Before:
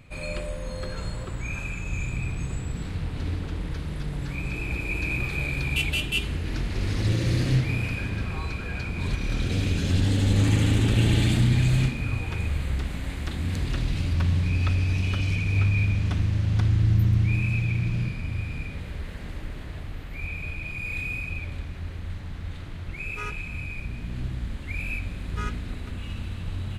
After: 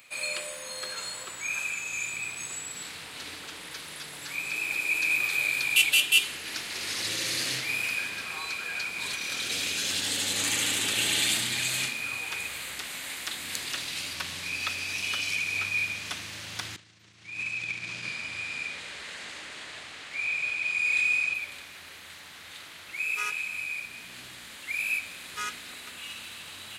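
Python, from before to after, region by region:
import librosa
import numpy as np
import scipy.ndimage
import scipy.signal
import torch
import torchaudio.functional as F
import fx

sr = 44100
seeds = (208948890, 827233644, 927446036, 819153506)

y = fx.chain(x, sr, fx.lowpass(hz=8400.0, slope=24),
    fx.over_compress(threshold_db=-26.0, ratio=-0.5), at=(16.76, 21.34))
y = fx.highpass(y, sr, hz=550.0, slope=6)
y = fx.tilt_eq(y, sr, slope=4.0)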